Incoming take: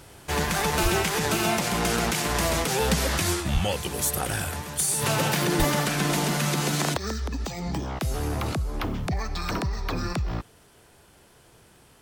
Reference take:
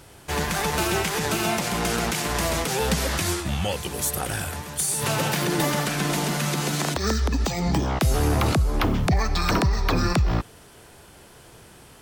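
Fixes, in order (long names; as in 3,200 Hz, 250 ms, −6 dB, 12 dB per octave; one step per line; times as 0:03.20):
clipped peaks rebuilt −14.5 dBFS
click removal
high-pass at the plosives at 0:00.82/0:03.53/0:05.58
level correction +7 dB, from 0:06.97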